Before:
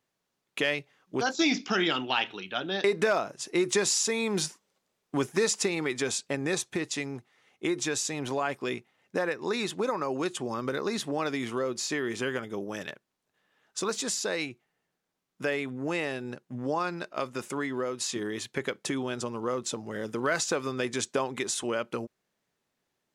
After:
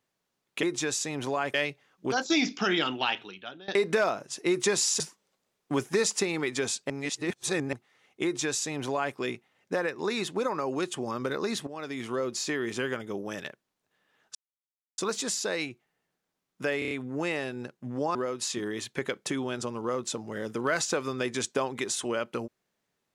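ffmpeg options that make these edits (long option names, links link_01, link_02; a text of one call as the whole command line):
ffmpeg -i in.wav -filter_complex "[0:a]asplit=14[link_01][link_02][link_03][link_04][link_05][link_06][link_07][link_08][link_09][link_10][link_11][link_12][link_13][link_14];[link_01]atrim=end=0.632[link_15];[link_02]atrim=start=7.668:end=8.582[link_16];[link_03]atrim=start=0.628:end=2.77,asetpts=PTS-STARTPTS,afade=type=out:start_time=1.472:duration=0.67:silence=0.0749894[link_17];[link_04]atrim=start=2.77:end=4.092,asetpts=PTS-STARTPTS,afade=type=in:duration=0.004:curve=hsin:silence=0.0749894[link_18];[link_05]atrim=start=4.428:end=6.332[link_19];[link_06]atrim=start=6.328:end=7.162,asetpts=PTS-STARTPTS,areverse[link_20];[link_07]atrim=start=7.158:end=11.1,asetpts=PTS-STARTPTS,afade=type=out:start_time=3.938:duration=0.004:curve=hsin:silence=0.199526[link_21];[link_08]atrim=start=11.1:end=13.78,asetpts=PTS-STARTPTS,afade=type=in:duration=0.52:silence=0.199526,afade=type=out:start_time=2.676:duration=0.004:curve=hsin,apad=pad_dur=0.63[link_22];[link_09]atrim=start=13.78:end=15.622,asetpts=PTS-STARTPTS,afade=type=in:duration=0.004:curve=hsin[link_23];[link_10]atrim=start=15.588:end=15.622[link_24];[link_11]atrim=start=15.588:end=15.622[link_25];[link_12]atrim=start=15.588:end=15.622[link_26];[link_13]atrim=start=15.588:end=16.832[link_27];[link_14]atrim=start=17.738[link_28];[link_15][link_16]acrossfade=duration=0.004:curve1=hsin:curve2=hsin[link_29];[link_17][link_18]concat=n=2:v=0:a=1[link_30];[link_29][link_30]acrossfade=duration=0.004:curve1=hsin:curve2=hsin[link_31];[link_31][link_19]acrossfade=duration=0.004:curve1=hsin:curve2=hsin[link_32];[link_32][link_20]acrossfade=duration=0.004:curve1=hsin:curve2=hsin[link_33];[link_21][link_22][link_23]concat=n=3:v=0:a=1[link_34];[link_33][link_34]acrossfade=duration=0.004:curve1=hsin:curve2=hsin[link_35];[link_35][link_24]acrossfade=duration=0.004:curve1=hsin:curve2=hsin[link_36];[link_36][link_25]acrossfade=duration=0.004:curve1=hsin:curve2=hsin[link_37];[link_37][link_26]acrossfade=duration=0.004:curve1=hsin:curve2=hsin[link_38];[link_38][link_27]acrossfade=duration=0.004:curve1=hsin:curve2=hsin[link_39];[link_39][link_28]acrossfade=duration=0.004:curve1=hsin:curve2=hsin" out.wav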